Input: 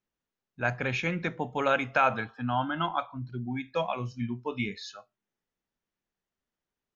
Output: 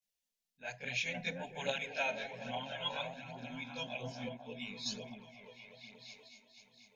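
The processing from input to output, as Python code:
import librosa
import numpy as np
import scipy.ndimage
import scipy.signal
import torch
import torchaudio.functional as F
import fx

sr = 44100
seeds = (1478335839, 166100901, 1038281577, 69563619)

p1 = fx.tilt_shelf(x, sr, db=-8.5, hz=1500.0)
p2 = fx.fixed_phaser(p1, sr, hz=330.0, stages=6)
p3 = p2 + fx.echo_opening(p2, sr, ms=243, hz=400, octaves=1, feedback_pct=70, wet_db=-3, dry=0)
p4 = fx.chorus_voices(p3, sr, voices=2, hz=0.59, base_ms=21, depth_ms=2.3, mix_pct=70)
p5 = fx.tremolo_random(p4, sr, seeds[0], hz=3.5, depth_pct=55)
y = F.gain(torch.from_numpy(p5), 1.0).numpy()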